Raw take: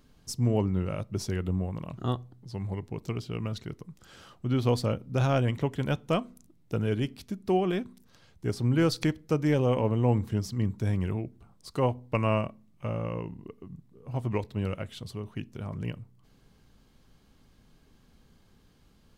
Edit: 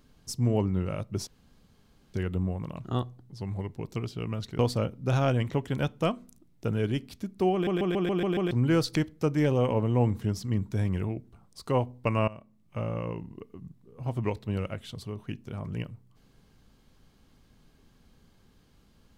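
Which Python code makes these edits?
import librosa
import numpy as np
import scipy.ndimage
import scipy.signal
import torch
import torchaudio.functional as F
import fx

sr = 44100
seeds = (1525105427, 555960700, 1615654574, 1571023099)

y = fx.edit(x, sr, fx.insert_room_tone(at_s=1.27, length_s=0.87),
    fx.cut(start_s=3.72, length_s=0.95),
    fx.stutter_over(start_s=7.61, slice_s=0.14, count=7),
    fx.fade_in_from(start_s=12.36, length_s=0.51, floor_db=-21.0), tone=tone)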